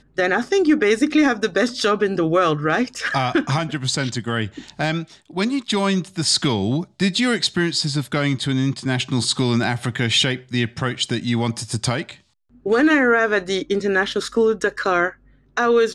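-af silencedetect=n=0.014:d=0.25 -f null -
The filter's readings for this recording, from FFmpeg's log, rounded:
silence_start: 12.16
silence_end: 12.66 | silence_duration: 0.50
silence_start: 15.13
silence_end: 15.57 | silence_duration: 0.43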